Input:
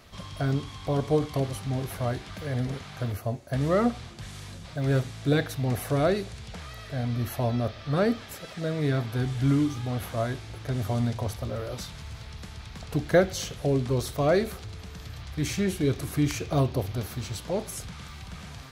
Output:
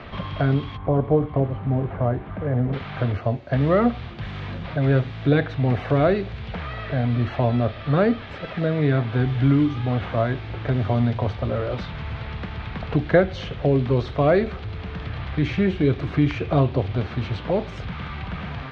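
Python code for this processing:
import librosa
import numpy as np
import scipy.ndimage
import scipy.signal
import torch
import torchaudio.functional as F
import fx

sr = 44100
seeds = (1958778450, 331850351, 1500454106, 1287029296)

y = fx.lowpass(x, sr, hz=1100.0, slope=12, at=(0.76, 2.72), fade=0.02)
y = scipy.signal.sosfilt(scipy.signal.butter(4, 3300.0, 'lowpass', fs=sr, output='sos'), y)
y = fx.band_squash(y, sr, depth_pct=40)
y = F.gain(torch.from_numpy(y), 6.0).numpy()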